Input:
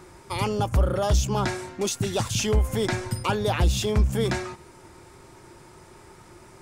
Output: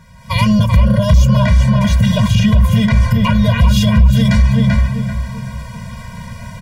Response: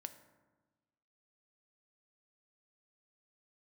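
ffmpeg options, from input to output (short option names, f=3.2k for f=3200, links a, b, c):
-filter_complex "[0:a]bandreject=f=1.4k:w=16,asettb=1/sr,asplit=3[a][b][c];[a]atrim=end=1.454[d];[b]atrim=start=1.45:end=3.58,asetpts=PTS-STARTPTS,afade=t=in:d=0.004:c=qsin,afade=t=out:st=2.126:d=0.004:c=qsin,acrossover=split=3100[e][f];[f]acompressor=threshold=-40dB:ratio=4:attack=1:release=60[g];[e][g]amix=inputs=2:normalize=0[h];[c]atrim=start=3.576[i];[d][h]acrossfade=d=0.004:c1=hsin:c2=qsin[j];[j][i]acrossfade=d=0.004:c1=qsin:c2=hsin,equalizer=f=250:t=o:w=1:g=5,equalizer=f=500:t=o:w=1:g=-12,equalizer=f=8k:t=o:w=1:g=-9,dynaudnorm=f=170:g=3:m=13.5dB,asoftclip=type=tanh:threshold=-5dB,asplit=2[k][l];[l]adelay=388,lowpass=f=2.1k:p=1,volume=-3dB,asplit=2[m][n];[n]adelay=388,lowpass=f=2.1k:p=1,volume=0.4,asplit=2[o][p];[p]adelay=388,lowpass=f=2.1k:p=1,volume=0.4,asplit=2[q][r];[r]adelay=388,lowpass=f=2.1k:p=1,volume=0.4,asplit=2[s][t];[t]adelay=388,lowpass=f=2.1k:p=1,volume=0.4[u];[k][m][o][q][s][u]amix=inputs=6:normalize=0,alimiter=level_in=10dB:limit=-1dB:release=50:level=0:latency=1,afftfilt=real='re*eq(mod(floor(b*sr/1024/230),2),0)':imag='im*eq(mod(floor(b*sr/1024/230),2),0)':win_size=1024:overlap=0.75,volume=-2dB"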